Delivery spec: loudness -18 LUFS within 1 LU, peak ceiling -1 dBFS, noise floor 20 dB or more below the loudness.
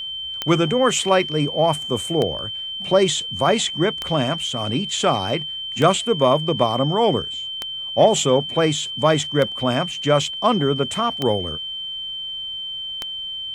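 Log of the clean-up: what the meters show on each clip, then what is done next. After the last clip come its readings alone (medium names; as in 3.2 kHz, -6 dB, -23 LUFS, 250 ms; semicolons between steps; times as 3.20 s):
clicks found 8; steady tone 3.1 kHz; tone level -27 dBFS; loudness -20.5 LUFS; peak level -1.5 dBFS; loudness target -18.0 LUFS
-> de-click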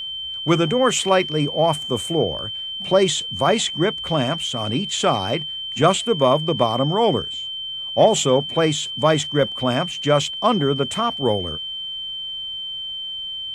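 clicks found 0; steady tone 3.1 kHz; tone level -27 dBFS
-> band-stop 3.1 kHz, Q 30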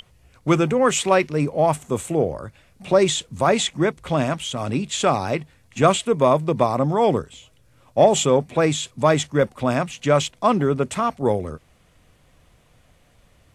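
steady tone not found; loudness -20.5 LUFS; peak level -2.0 dBFS; loudness target -18.0 LUFS
-> trim +2.5 dB; peak limiter -1 dBFS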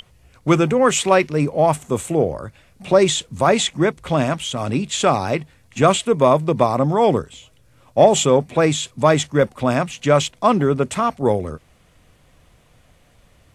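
loudness -18.0 LUFS; peak level -1.0 dBFS; noise floor -55 dBFS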